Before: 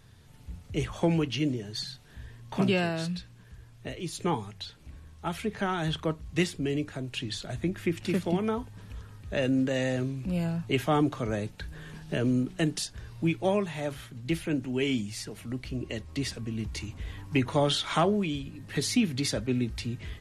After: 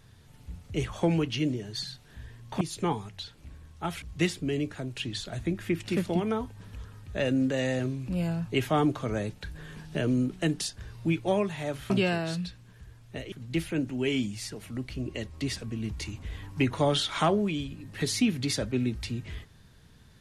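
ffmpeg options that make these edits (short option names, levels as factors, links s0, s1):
-filter_complex "[0:a]asplit=5[s0][s1][s2][s3][s4];[s0]atrim=end=2.612[s5];[s1]atrim=start=4.028:end=5.442[s6];[s2]atrim=start=6.188:end=14.072[s7];[s3]atrim=start=2.608:end=4.032[s8];[s4]atrim=start=14.068[s9];[s5][s6]acrossfade=d=0.004:c1=hsin:c2=hsin[s10];[s10][s7]acrossfade=d=0.004:c1=hsin:c2=hsin[s11];[s11][s8]acrossfade=d=0.004:c1=hsin:c2=hsin[s12];[s12][s9]acrossfade=d=0.004:c1=hsin:c2=hsin"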